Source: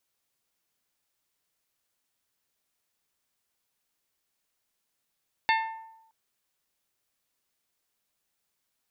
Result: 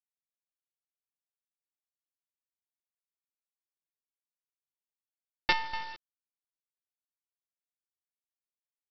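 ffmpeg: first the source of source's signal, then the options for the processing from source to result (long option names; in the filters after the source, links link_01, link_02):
-f lavfi -i "aevalsrc='0.0891*pow(10,-3*t/0.89)*sin(2*PI*894*t)+0.0668*pow(10,-3*t/0.548)*sin(2*PI*1788*t)+0.0501*pow(10,-3*t/0.482)*sin(2*PI*2145.6*t)+0.0376*pow(10,-3*t/0.412)*sin(2*PI*2682*t)+0.0282*pow(10,-3*t/0.337)*sin(2*PI*3576*t)+0.0211*pow(10,-3*t/0.288)*sin(2*PI*4470*t)':duration=0.62:sample_rate=44100"
-af "aecho=1:1:245:0.355,aresample=11025,acrusher=bits=4:dc=4:mix=0:aa=0.000001,aresample=44100"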